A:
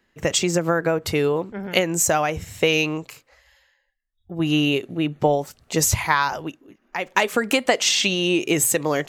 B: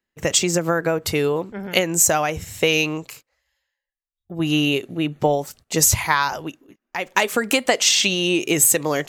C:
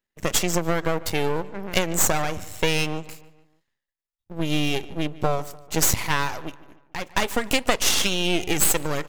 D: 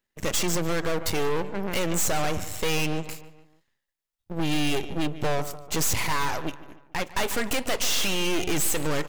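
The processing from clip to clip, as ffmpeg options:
ffmpeg -i in.wav -af "agate=range=-17dB:threshold=-46dB:ratio=16:detection=peak,highshelf=frequency=4900:gain=6.5" out.wav
ffmpeg -i in.wav -filter_complex "[0:a]aeval=exprs='max(val(0),0)':channel_layout=same,asplit=2[link_01][link_02];[link_02]adelay=147,lowpass=frequency=3300:poles=1,volume=-18.5dB,asplit=2[link_03][link_04];[link_04]adelay=147,lowpass=frequency=3300:poles=1,volume=0.5,asplit=2[link_05][link_06];[link_06]adelay=147,lowpass=frequency=3300:poles=1,volume=0.5,asplit=2[link_07][link_08];[link_08]adelay=147,lowpass=frequency=3300:poles=1,volume=0.5[link_09];[link_01][link_03][link_05][link_07][link_09]amix=inputs=5:normalize=0" out.wav
ffmpeg -i in.wav -af "aeval=exprs='clip(val(0),-1,0.0841)':channel_layout=same,volume=3.5dB" out.wav

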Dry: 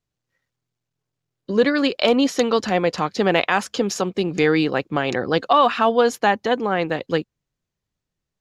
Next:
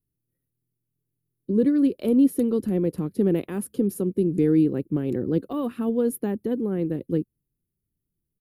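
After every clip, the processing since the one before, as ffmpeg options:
ffmpeg -i in.wav -af "firequalizer=gain_entry='entry(350,0);entry(700,-24);entry(6400,-28);entry(10000,6)':delay=0.05:min_phase=1,volume=1.5dB" out.wav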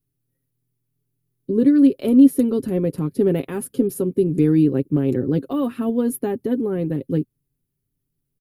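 ffmpeg -i in.wav -af "aecho=1:1:7.4:0.53,volume=3.5dB" out.wav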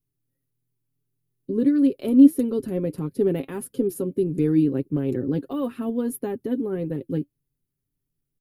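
ffmpeg -i in.wav -af "flanger=delay=1.9:depth=1.8:regen=79:speed=1.6:shape=sinusoidal" out.wav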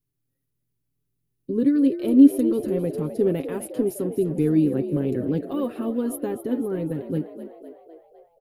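ffmpeg -i in.wav -filter_complex "[0:a]asplit=7[link_01][link_02][link_03][link_04][link_05][link_06][link_07];[link_02]adelay=253,afreqshift=55,volume=-12dB[link_08];[link_03]adelay=506,afreqshift=110,volume=-16.9dB[link_09];[link_04]adelay=759,afreqshift=165,volume=-21.8dB[link_10];[link_05]adelay=1012,afreqshift=220,volume=-26.6dB[link_11];[link_06]adelay=1265,afreqshift=275,volume=-31.5dB[link_12];[link_07]adelay=1518,afreqshift=330,volume=-36.4dB[link_13];[link_01][link_08][link_09][link_10][link_11][link_12][link_13]amix=inputs=7:normalize=0" out.wav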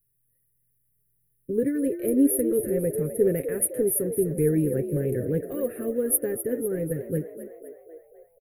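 ffmpeg -i in.wav -af "firequalizer=gain_entry='entry(100,0);entry(270,-12);entry(470,1);entry(910,-22);entry(1800,2);entry(3100,-20);entry(5100,-24);entry(10000,11)':delay=0.05:min_phase=1,volume=3.5dB" out.wav

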